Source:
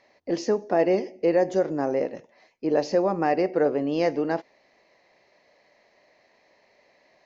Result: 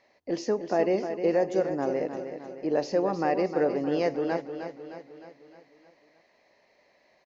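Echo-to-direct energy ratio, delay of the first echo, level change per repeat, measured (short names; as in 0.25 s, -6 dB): -7.5 dB, 0.308 s, -5.5 dB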